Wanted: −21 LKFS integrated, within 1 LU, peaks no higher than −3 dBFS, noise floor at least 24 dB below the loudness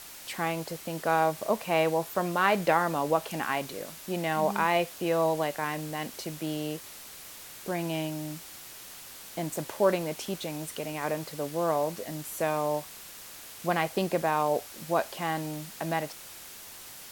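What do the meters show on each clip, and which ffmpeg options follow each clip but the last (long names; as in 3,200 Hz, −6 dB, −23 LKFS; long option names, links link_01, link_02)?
background noise floor −46 dBFS; target noise floor −54 dBFS; integrated loudness −30.0 LKFS; sample peak −9.5 dBFS; target loudness −21.0 LKFS
→ -af "afftdn=noise_reduction=8:noise_floor=-46"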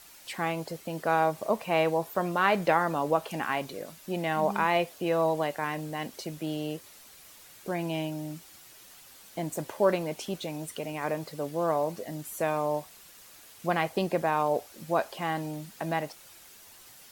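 background noise floor −52 dBFS; target noise floor −54 dBFS
→ -af "afftdn=noise_reduction=6:noise_floor=-52"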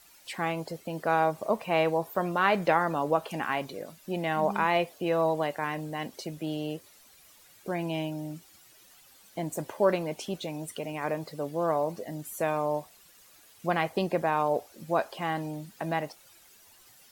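background noise floor −57 dBFS; integrated loudness −30.0 LKFS; sample peak −9.5 dBFS; target loudness −21.0 LKFS
→ -af "volume=9dB,alimiter=limit=-3dB:level=0:latency=1"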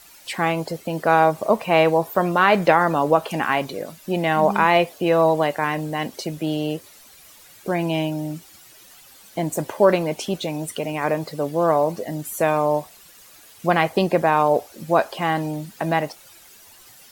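integrated loudness −21.0 LKFS; sample peak −3.0 dBFS; background noise floor −48 dBFS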